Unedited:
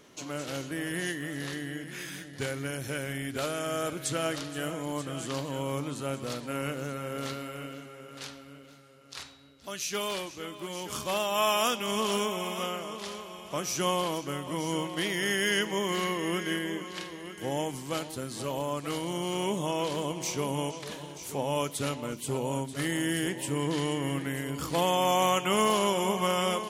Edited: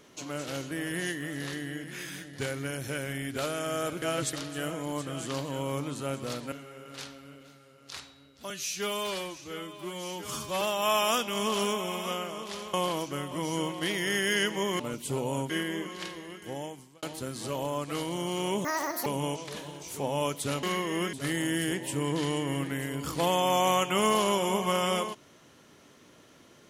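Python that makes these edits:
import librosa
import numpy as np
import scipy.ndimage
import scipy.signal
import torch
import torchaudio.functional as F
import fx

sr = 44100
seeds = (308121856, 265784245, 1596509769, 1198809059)

y = fx.edit(x, sr, fx.reverse_span(start_s=4.02, length_s=0.31),
    fx.cut(start_s=6.52, length_s=1.23),
    fx.stretch_span(start_s=9.73, length_s=1.41, factor=1.5),
    fx.cut(start_s=13.26, length_s=0.63),
    fx.swap(start_s=15.95, length_s=0.5, other_s=21.98, other_length_s=0.7),
    fx.fade_out_span(start_s=17.11, length_s=0.87),
    fx.speed_span(start_s=19.6, length_s=0.81, speed=1.95), tone=tone)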